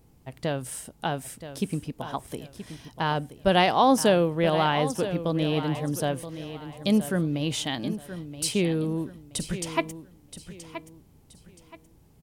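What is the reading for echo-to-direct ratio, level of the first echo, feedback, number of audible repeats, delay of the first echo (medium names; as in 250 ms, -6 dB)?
-11.5 dB, -12.0 dB, 30%, 3, 975 ms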